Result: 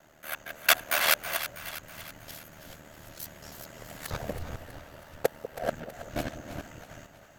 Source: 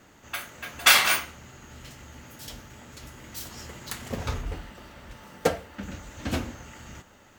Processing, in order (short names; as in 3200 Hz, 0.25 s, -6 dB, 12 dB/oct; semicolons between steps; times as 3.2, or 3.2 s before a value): local time reversal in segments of 0.228 s; thirty-one-band EQ 630 Hz +12 dB, 1600 Hz +5 dB, 12500 Hz +10 dB; ring modulator 38 Hz; split-band echo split 620 Hz, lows 0.194 s, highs 0.323 s, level -11.5 dB; gain -3 dB